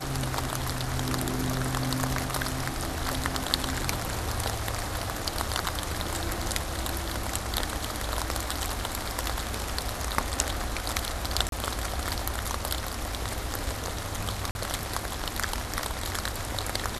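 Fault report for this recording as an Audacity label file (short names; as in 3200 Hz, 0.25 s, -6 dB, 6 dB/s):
11.490000	11.520000	gap 32 ms
14.510000	14.550000	gap 41 ms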